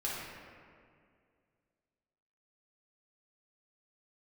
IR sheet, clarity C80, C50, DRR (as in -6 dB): 0.5 dB, -2.0 dB, -7.0 dB